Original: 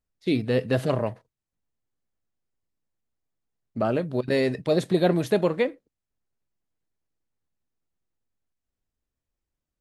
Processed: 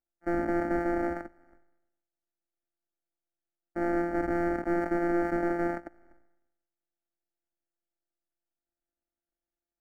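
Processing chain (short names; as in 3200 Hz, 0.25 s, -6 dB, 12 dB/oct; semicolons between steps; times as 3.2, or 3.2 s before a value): sample sorter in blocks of 256 samples; resonant low shelf 220 Hz -7 dB, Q 1.5; limiter -14.5 dBFS, peak gain reduction 7.5 dB; sample leveller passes 2; polynomial smoothing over 41 samples; fixed phaser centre 690 Hz, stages 8; sustainer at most 62 dB/s; gain -1.5 dB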